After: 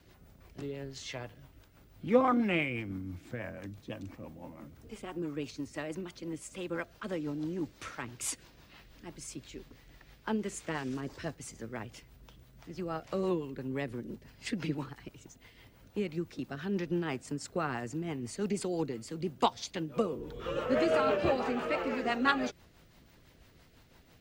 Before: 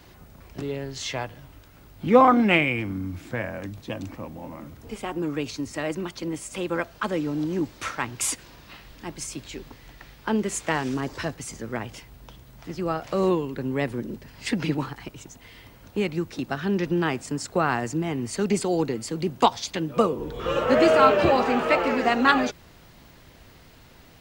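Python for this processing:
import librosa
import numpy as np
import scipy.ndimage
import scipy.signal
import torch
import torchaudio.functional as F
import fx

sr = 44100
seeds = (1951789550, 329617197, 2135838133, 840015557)

y = fx.rotary(x, sr, hz=6.0)
y = y * 10.0 ** (-7.5 / 20.0)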